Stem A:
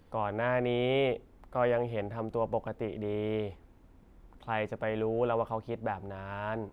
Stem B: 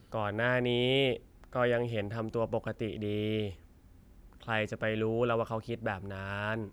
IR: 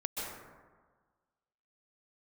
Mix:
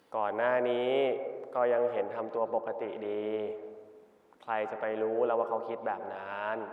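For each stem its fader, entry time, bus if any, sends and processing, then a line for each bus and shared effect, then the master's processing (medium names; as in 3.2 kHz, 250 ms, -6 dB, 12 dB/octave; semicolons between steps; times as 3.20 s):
-1.5 dB, 0.00 s, send -8 dB, low-pass that closes with the level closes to 1.4 kHz, closed at -28 dBFS
-7.0 dB, 0.00 s, no send, attacks held to a fixed rise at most 180 dB/s; auto duck -9 dB, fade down 1.20 s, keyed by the first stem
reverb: on, RT60 1.5 s, pre-delay 117 ms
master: high-pass 380 Hz 12 dB/octave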